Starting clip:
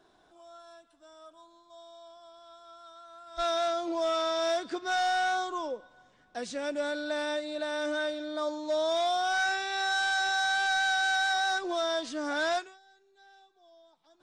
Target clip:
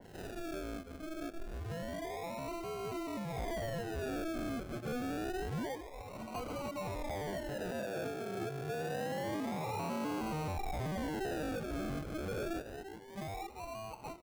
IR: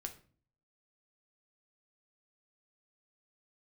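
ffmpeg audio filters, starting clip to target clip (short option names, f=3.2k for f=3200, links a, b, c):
-filter_complex "[0:a]lowpass=5.6k,dynaudnorm=f=120:g=3:m=15dB,highpass=f=190:w=0.5412,highpass=f=190:w=1.3066,aecho=1:1:227:0.075,acompressor=threshold=-49dB:ratio=3,equalizer=f=1k:t=o:w=1:g=11,equalizer=f=2k:t=o:w=1:g=6,equalizer=f=4k:t=o:w=1:g=11,acrusher=samples=36:mix=1:aa=0.000001:lfo=1:lforange=21.6:lforate=0.27,asoftclip=type=tanh:threshold=-35.5dB,asettb=1/sr,asplit=3[a][b][c];[a]atrim=end=7.714[d];[b]atrim=start=7.71:end=10.21,asetpts=PTS-STARTPTS,afade=t=in:d=0.004:c=qsin,afade=t=out:st=2.496:d=0.004:c=qsin,afreqshift=83[e];[c]atrim=start=10.206[f];[d][e]acrossfade=d=0.004:c1=hsin:c2=qsin[g];[g][f]acrossfade=d=0.004:c1=qsin:c2=hsin,adynamicequalizer=threshold=0.00126:dfrequency=2200:dqfactor=0.7:tfrequency=2200:tqfactor=0.7:attack=5:release=100:ratio=0.375:range=2.5:mode=cutabove:tftype=highshelf,volume=1dB"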